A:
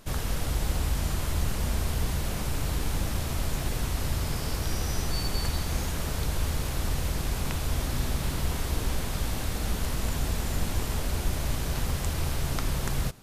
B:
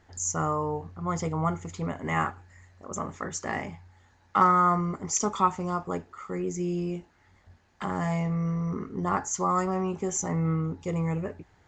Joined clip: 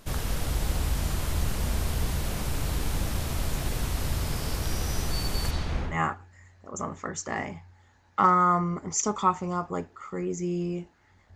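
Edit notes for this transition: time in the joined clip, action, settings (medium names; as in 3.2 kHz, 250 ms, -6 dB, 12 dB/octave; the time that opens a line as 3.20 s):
A
5.50–5.99 s: low-pass 6.7 kHz -> 1.4 kHz
5.92 s: go over to B from 2.09 s, crossfade 0.14 s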